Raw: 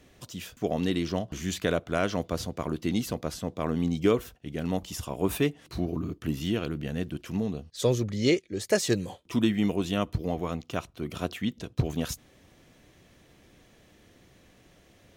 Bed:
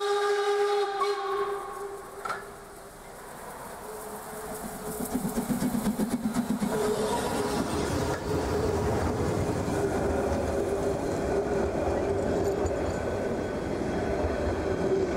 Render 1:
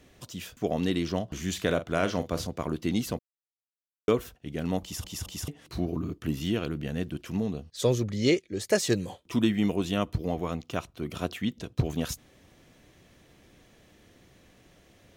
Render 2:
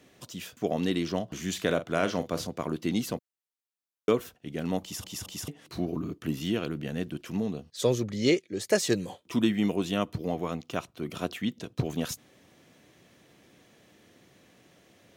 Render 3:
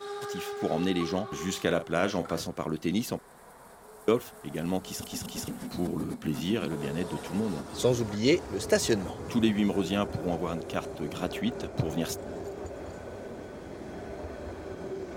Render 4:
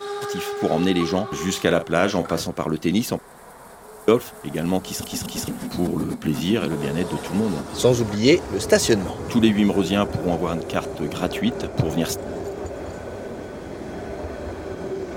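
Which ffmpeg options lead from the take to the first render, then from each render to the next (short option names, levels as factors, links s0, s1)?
-filter_complex "[0:a]asettb=1/sr,asplit=3[s0][s1][s2];[s0]atrim=end=1.534[s3];[s1]atrim=start=1.53:end=2.47,asetpts=PTS-STARTPTS,afade=t=in:d=0.004:c=qsin,afade=t=out:st=0.936:d=0.004:c=qsin,asplit=2[s4][s5];[s5]adelay=43,volume=0.266[s6];[s4][s6]amix=inputs=2:normalize=0,atrim=end_sample=41454[s7];[s2]atrim=start=2.466[s8];[s3][s7]acrossfade=d=0.004:c1=hsin:c2=qsin[s9];[s9][s8]acrossfade=d=0.004:c1=qsin:c2=hsin,asplit=6[s10][s11][s12][s13][s14][s15];[s10]atrim=end=3.19,asetpts=PTS-STARTPTS,afade=t=out:st=3.186:d=0.004:c=hsin[s16];[s11]atrim=start=3.19:end=4.08,asetpts=PTS-STARTPTS,volume=0[s17];[s12]atrim=start=4.08:end=5.042,asetpts=PTS-STARTPTS,afade=t=in:d=0.004:c=hsin[s18];[s13]atrim=start=4.818:end=5.042[s19];[s14]atrim=start=4.818:end=5.042[s20];[s15]atrim=start=5.478[s21];[s16][s17][s18]concat=n=3:v=0:a=1[s22];[s22][s19]acrossfade=d=0.004:c1=hsin:c2=hsin[s23];[s23][s20]acrossfade=d=0.004:c1=hsin:c2=hsin[s24];[s24][s21]acrossfade=d=0.004:c1=hsin:c2=hsin"
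-af "highpass=130"
-filter_complex "[1:a]volume=0.282[s0];[0:a][s0]amix=inputs=2:normalize=0"
-af "volume=2.51,alimiter=limit=0.708:level=0:latency=1"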